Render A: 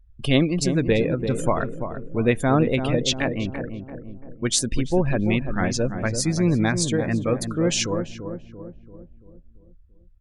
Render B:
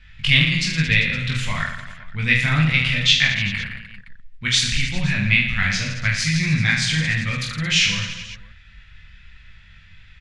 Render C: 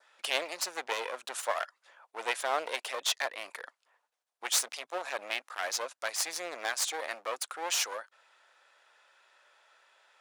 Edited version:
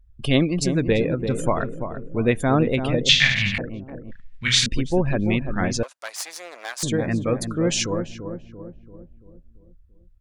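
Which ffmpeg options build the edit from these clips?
-filter_complex "[1:a]asplit=2[a][b];[0:a]asplit=4[c][d][e][f];[c]atrim=end=3.092[g];[a]atrim=start=3.088:end=3.582[h];[d]atrim=start=3.578:end=4.112[i];[b]atrim=start=4.108:end=4.662[j];[e]atrim=start=4.658:end=5.832[k];[2:a]atrim=start=5.828:end=6.832[l];[f]atrim=start=6.828[m];[g][h]acrossfade=d=0.004:c1=hsin:c2=hsin[n];[n][i]acrossfade=d=0.004:c1=hsin:c2=hsin[o];[o][j]acrossfade=d=0.004:c1=hsin:c2=hsin[p];[p][k]acrossfade=d=0.004:c1=hsin:c2=hsin[q];[q][l]acrossfade=d=0.004:c1=hsin:c2=hsin[r];[r][m]acrossfade=d=0.004:c1=hsin:c2=hsin"

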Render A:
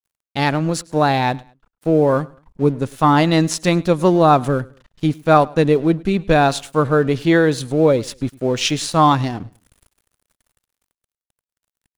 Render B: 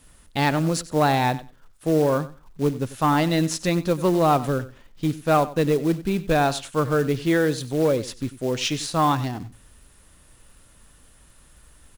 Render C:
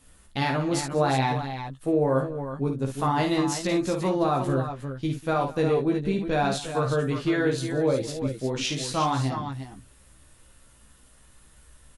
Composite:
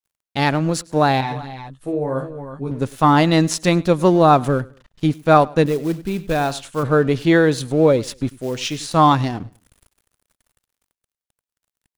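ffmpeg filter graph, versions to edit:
-filter_complex "[1:a]asplit=2[a][b];[0:a]asplit=4[c][d][e][f];[c]atrim=end=1.212[g];[2:a]atrim=start=1.208:end=2.712[h];[d]atrim=start=2.708:end=5.662[i];[a]atrim=start=5.658:end=6.832[j];[e]atrim=start=6.828:end=8.312[k];[b]atrim=start=8.308:end=8.912[l];[f]atrim=start=8.908[m];[g][h]acrossfade=d=0.004:c1=hsin:c2=hsin[n];[n][i]acrossfade=d=0.004:c1=hsin:c2=hsin[o];[o][j]acrossfade=d=0.004:c1=hsin:c2=hsin[p];[p][k]acrossfade=d=0.004:c1=hsin:c2=hsin[q];[q][l]acrossfade=d=0.004:c1=hsin:c2=hsin[r];[r][m]acrossfade=d=0.004:c1=hsin:c2=hsin"

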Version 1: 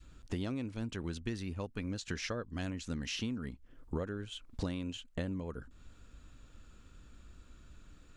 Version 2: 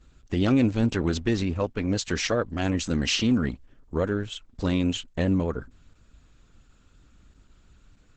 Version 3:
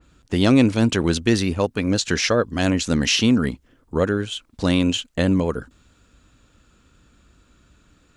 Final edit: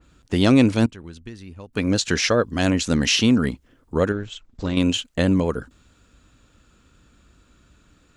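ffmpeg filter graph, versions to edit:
-filter_complex "[2:a]asplit=3[a][b][c];[a]atrim=end=0.862[d];[0:a]atrim=start=0.858:end=1.732[e];[b]atrim=start=1.728:end=4.122[f];[1:a]atrim=start=4.118:end=4.772[g];[c]atrim=start=4.768[h];[d][e]acrossfade=d=0.004:c1=hsin:c2=hsin[i];[i][f]acrossfade=d=0.004:c1=hsin:c2=hsin[j];[j][g]acrossfade=d=0.004:c1=hsin:c2=hsin[k];[k][h]acrossfade=d=0.004:c1=hsin:c2=hsin"

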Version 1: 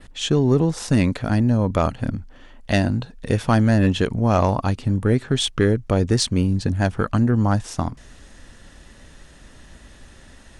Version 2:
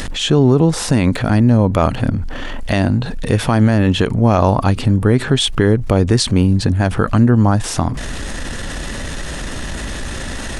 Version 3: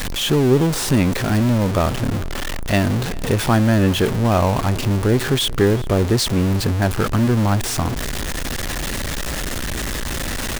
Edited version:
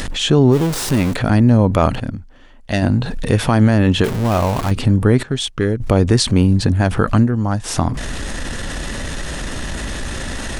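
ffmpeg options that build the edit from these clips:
-filter_complex "[2:a]asplit=2[a][b];[0:a]asplit=3[c][d][e];[1:a]asplit=6[f][g][h][i][j][k];[f]atrim=end=0.56[l];[a]atrim=start=0.5:end=1.16[m];[g]atrim=start=1.1:end=2.002[n];[c]atrim=start=1.998:end=2.822[o];[h]atrim=start=2.818:end=4.042[p];[b]atrim=start=4.038:end=4.712[q];[i]atrim=start=4.708:end=5.232[r];[d]atrim=start=5.228:end=5.802[s];[j]atrim=start=5.798:end=7.29[t];[e]atrim=start=7.19:end=7.71[u];[k]atrim=start=7.61[v];[l][m]acrossfade=d=0.06:c1=tri:c2=tri[w];[w][n]acrossfade=d=0.06:c1=tri:c2=tri[x];[x][o]acrossfade=d=0.004:c1=hsin:c2=hsin[y];[y][p]acrossfade=d=0.004:c1=hsin:c2=hsin[z];[z][q]acrossfade=d=0.004:c1=hsin:c2=hsin[aa];[aa][r]acrossfade=d=0.004:c1=hsin:c2=hsin[ab];[ab][s]acrossfade=d=0.004:c1=hsin:c2=hsin[ac];[ac][t]acrossfade=d=0.004:c1=hsin:c2=hsin[ad];[ad][u]acrossfade=d=0.1:c1=tri:c2=tri[ae];[ae][v]acrossfade=d=0.1:c1=tri:c2=tri"

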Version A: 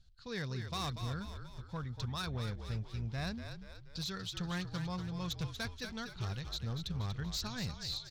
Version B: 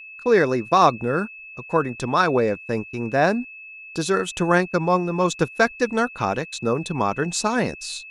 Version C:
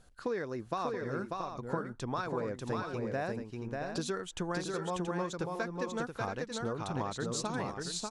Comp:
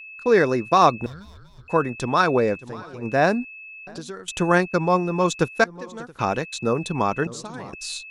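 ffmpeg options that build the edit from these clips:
-filter_complex "[2:a]asplit=4[a][b][c][d];[1:a]asplit=6[e][f][g][h][i][j];[e]atrim=end=1.062[k];[0:a]atrim=start=1.058:end=1.682[l];[f]atrim=start=1.678:end=2.64[m];[a]atrim=start=2.58:end=3.06[n];[g]atrim=start=3:end=3.872[o];[b]atrim=start=3.868:end=4.282[p];[h]atrim=start=4.278:end=5.642[q];[c]atrim=start=5.638:end=6.192[r];[i]atrim=start=6.188:end=7.272[s];[d]atrim=start=7.268:end=7.732[t];[j]atrim=start=7.728[u];[k][l]acrossfade=d=0.004:c1=hsin:c2=hsin[v];[v][m]acrossfade=d=0.004:c1=hsin:c2=hsin[w];[w][n]acrossfade=d=0.06:c1=tri:c2=tri[x];[x][o]acrossfade=d=0.06:c1=tri:c2=tri[y];[y][p]acrossfade=d=0.004:c1=hsin:c2=hsin[z];[z][q]acrossfade=d=0.004:c1=hsin:c2=hsin[aa];[aa][r]acrossfade=d=0.004:c1=hsin:c2=hsin[ab];[ab][s]acrossfade=d=0.004:c1=hsin:c2=hsin[ac];[ac][t]acrossfade=d=0.004:c1=hsin:c2=hsin[ad];[ad][u]acrossfade=d=0.004:c1=hsin:c2=hsin"

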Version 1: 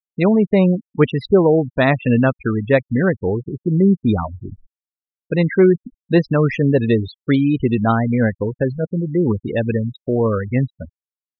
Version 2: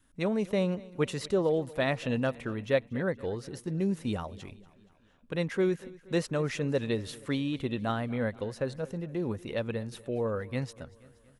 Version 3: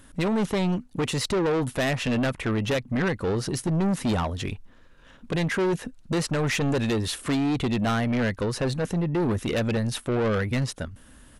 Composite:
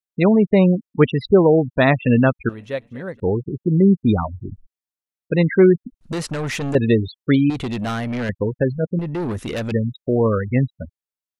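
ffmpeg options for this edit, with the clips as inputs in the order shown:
-filter_complex "[2:a]asplit=3[a][b][c];[0:a]asplit=5[d][e][f][g][h];[d]atrim=end=2.492[i];[1:a]atrim=start=2.488:end=3.202[j];[e]atrim=start=3.198:end=6.012[k];[a]atrim=start=6.008:end=6.752[l];[f]atrim=start=6.748:end=7.502[m];[b]atrim=start=7.498:end=8.292[n];[g]atrim=start=8.288:end=8.992[o];[c]atrim=start=8.988:end=9.722[p];[h]atrim=start=9.718[q];[i][j]acrossfade=d=0.004:c1=hsin:c2=hsin[r];[r][k]acrossfade=d=0.004:c1=hsin:c2=hsin[s];[s][l]acrossfade=d=0.004:c1=hsin:c2=hsin[t];[t][m]acrossfade=d=0.004:c1=hsin:c2=hsin[u];[u][n]acrossfade=d=0.004:c1=hsin:c2=hsin[v];[v][o]acrossfade=d=0.004:c1=hsin:c2=hsin[w];[w][p]acrossfade=d=0.004:c1=hsin:c2=hsin[x];[x][q]acrossfade=d=0.004:c1=hsin:c2=hsin"

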